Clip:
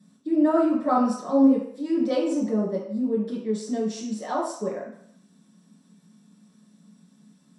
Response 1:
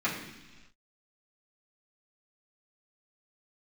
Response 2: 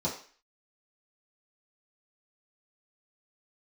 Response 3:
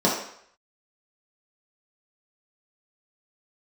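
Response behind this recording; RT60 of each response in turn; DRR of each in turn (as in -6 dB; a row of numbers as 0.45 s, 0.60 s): 3; no single decay rate, 0.40 s, 0.65 s; -10.0 dB, -8.0 dB, -6.0 dB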